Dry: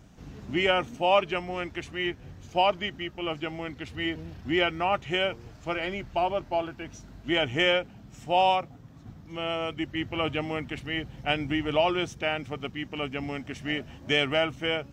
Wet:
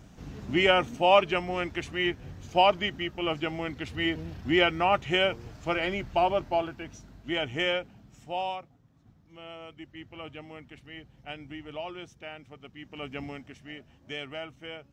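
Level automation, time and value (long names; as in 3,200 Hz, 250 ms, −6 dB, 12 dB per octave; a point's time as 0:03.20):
0:06.41 +2 dB
0:07.23 −4.5 dB
0:07.93 −4.5 dB
0:08.77 −13.5 dB
0:12.63 −13.5 dB
0:13.20 −3.5 dB
0:13.66 −13 dB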